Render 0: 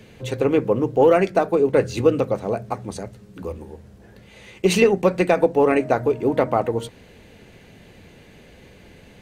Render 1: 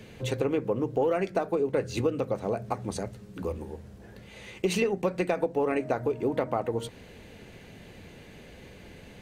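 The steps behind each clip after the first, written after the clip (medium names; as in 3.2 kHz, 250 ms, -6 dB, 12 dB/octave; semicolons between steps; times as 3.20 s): compression 3:1, threshold -25 dBFS, peak gain reduction 11 dB; trim -1 dB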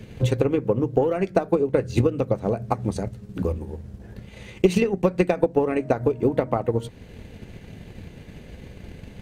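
bass shelf 240 Hz +10.5 dB; transient shaper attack +7 dB, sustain -3 dB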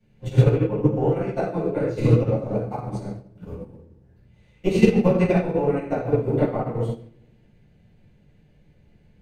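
reverberation RT60 1.1 s, pre-delay 6 ms, DRR -11.5 dB; upward expansion 2.5:1, over -17 dBFS; trim -8 dB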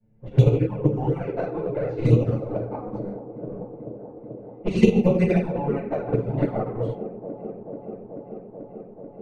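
touch-sensitive flanger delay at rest 9.1 ms, full sweep at -13.5 dBFS; level-controlled noise filter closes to 970 Hz, open at -17 dBFS; feedback echo behind a band-pass 436 ms, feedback 83%, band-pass 430 Hz, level -12 dB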